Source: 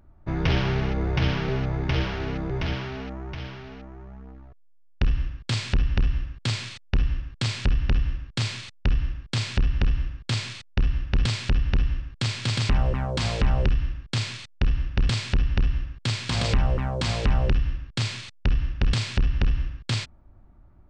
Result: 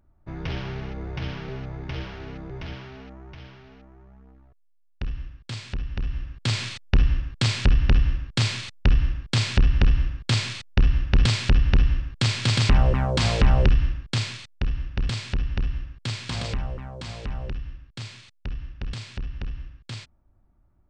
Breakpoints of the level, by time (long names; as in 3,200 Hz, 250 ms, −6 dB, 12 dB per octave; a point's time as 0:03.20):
0:05.91 −8 dB
0:06.63 +4 dB
0:13.86 +4 dB
0:14.67 −3.5 dB
0:16.29 −3.5 dB
0:16.81 −10 dB